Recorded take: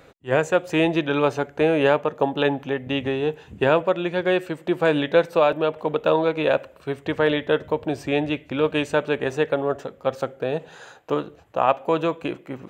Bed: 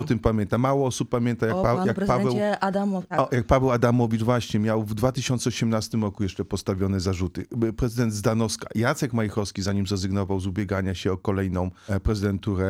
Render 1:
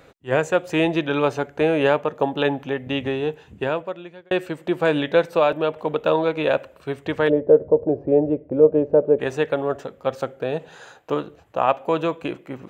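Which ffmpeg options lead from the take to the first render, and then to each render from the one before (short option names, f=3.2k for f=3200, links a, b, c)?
-filter_complex "[0:a]asplit=3[a][b][c];[a]afade=t=out:st=7.28:d=0.02[d];[b]lowpass=f=510:t=q:w=2.7,afade=t=in:st=7.28:d=0.02,afade=t=out:st=9.18:d=0.02[e];[c]afade=t=in:st=9.18:d=0.02[f];[d][e][f]amix=inputs=3:normalize=0,asplit=2[g][h];[g]atrim=end=4.31,asetpts=PTS-STARTPTS,afade=t=out:st=3.16:d=1.15[i];[h]atrim=start=4.31,asetpts=PTS-STARTPTS,afade=t=in:d=0.004:c=hsin[j];[i][j]concat=n=2:v=0:a=1"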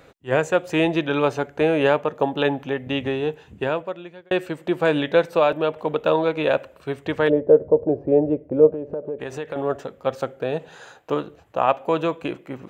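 -filter_complex "[0:a]asettb=1/sr,asplit=3[a][b][c];[a]atrim=end=8.704[d];[b]atrim=start=8.7:end=9.56,asetpts=PTS-STARTPTS,afade=t=in:d=0.004:c=qsin,afade=t=out:st=0.856:d=0.004:c=qsin,acompressor=threshold=-27dB:ratio=4:attack=3.2:release=140:knee=1:detection=peak[e];[c]atrim=start=9.556[f];[d][e]acrossfade=d=0.004:c1=hsin:c2=qsin[g];[g][f]acrossfade=d=0.004:c1=qsin:c2=hsin"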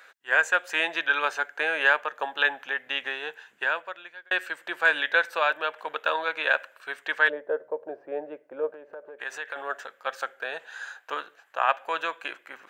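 -af "highpass=1.1k,equalizer=f=1.6k:t=o:w=0.35:g=11"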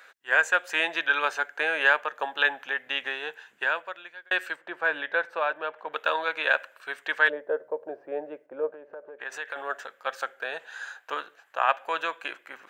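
-filter_complex "[0:a]asplit=3[a][b][c];[a]afade=t=out:st=4.55:d=0.02[d];[b]lowpass=f=1.1k:p=1,afade=t=in:st=4.55:d=0.02,afade=t=out:st=5.92:d=0.02[e];[c]afade=t=in:st=5.92:d=0.02[f];[d][e][f]amix=inputs=3:normalize=0,asettb=1/sr,asplit=3[g][h][i];[g]atrim=end=8.464[j];[h]atrim=start=8.46:end=9.32,asetpts=PTS-STARTPTS,afade=t=in:d=0.004:c=qsin,afade=t=out:st=0.856:d=0.004:c=qsin,lowpass=f=2.3k:p=1[k];[i]atrim=start=9.316[l];[j][k]acrossfade=d=0.004:c1=hsin:c2=qsin[m];[m][l]acrossfade=d=0.004:c1=qsin:c2=hsin"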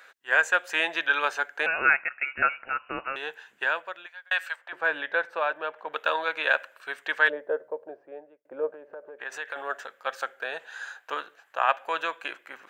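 -filter_complex "[0:a]asettb=1/sr,asplit=3[a][b][c];[a]atrim=end=1.664[d];[b]atrim=start=1.66:end=3.16,asetpts=PTS-STARTPTS,afade=t=in:d=0.004:c=qsin,afade=t=out:st=1.496:d=0.004:c=qsin,lowpass=f=2.6k:t=q:w=0.5098,lowpass=f=2.6k:t=q:w=0.6013,lowpass=f=2.6k:t=q:w=0.9,lowpass=f=2.6k:t=q:w=2.563,afreqshift=-3100[e];[c]atrim=start=3.156[f];[d][e]acrossfade=d=0.004:c1=hsin:c2=qsin[g];[g][f]acrossfade=d=0.004:c1=qsin:c2=hsin,asettb=1/sr,asplit=3[h][i][j];[h]atrim=end=4.064[k];[i]atrim=start=4.06:end=4.73,asetpts=PTS-STARTPTS,afade=t=in:d=0.004:c=qsin,afade=t=out:st=0.666:d=0.004:c=qsin,highpass=f=660:w=0.5412,highpass=f=660:w=1.3066[l];[j]atrim=start=4.726[m];[k][l]acrossfade=d=0.004:c1=hsin:c2=qsin[n];[n][m]acrossfade=d=0.004:c1=qsin:c2=hsin,asplit=2[o][p];[o]atrim=end=8.45,asetpts=PTS-STARTPTS,afade=t=out:st=7.51:d=0.94[q];[p]atrim=start=8.45,asetpts=PTS-STARTPTS,afade=t=in:d=0.004:c=hsin[r];[q][r]concat=n=2:v=0:a=1"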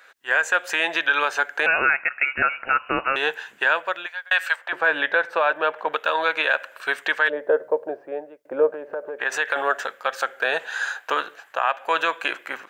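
-af "dynaudnorm=f=100:g=3:m=12dB,alimiter=limit=-9dB:level=0:latency=1:release=134"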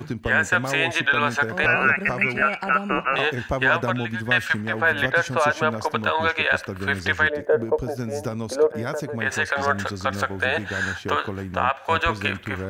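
-filter_complex "[1:a]volume=-6.5dB[a];[0:a][a]amix=inputs=2:normalize=0"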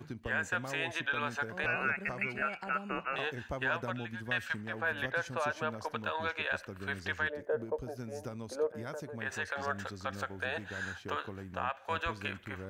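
-af "volume=-13.5dB"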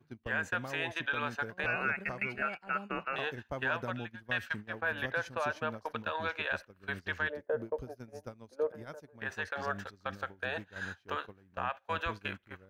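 -af "agate=range=-18dB:threshold=-39dB:ratio=16:detection=peak,equalizer=f=7.7k:w=2.1:g=-6.5"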